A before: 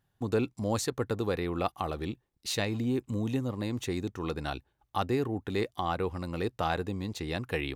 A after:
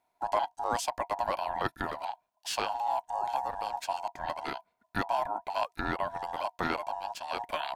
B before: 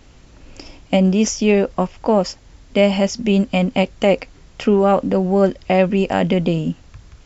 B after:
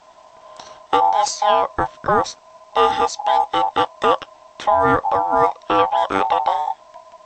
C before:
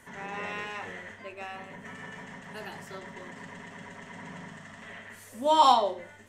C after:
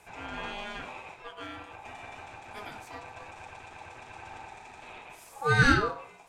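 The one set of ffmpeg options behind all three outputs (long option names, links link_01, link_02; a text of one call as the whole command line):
ffmpeg -i in.wav -af "afreqshift=-230,aeval=exprs='val(0)*sin(2*PI*830*n/s)':channel_layout=same,volume=1.5dB" out.wav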